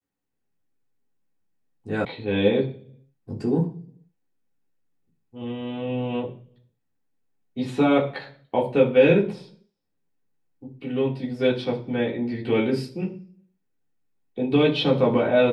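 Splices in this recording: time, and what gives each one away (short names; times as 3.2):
2.05 sound cut off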